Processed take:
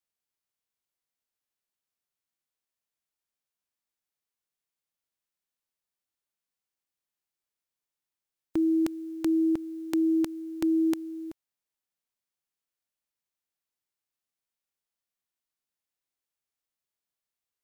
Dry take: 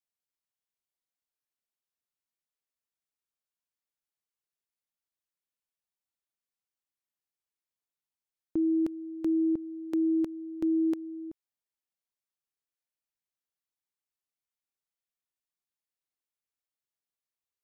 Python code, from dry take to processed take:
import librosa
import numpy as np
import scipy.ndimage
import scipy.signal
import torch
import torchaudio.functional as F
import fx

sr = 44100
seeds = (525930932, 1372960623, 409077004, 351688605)

y = fx.envelope_flatten(x, sr, power=0.6)
y = y * 10.0 ** (2.0 / 20.0)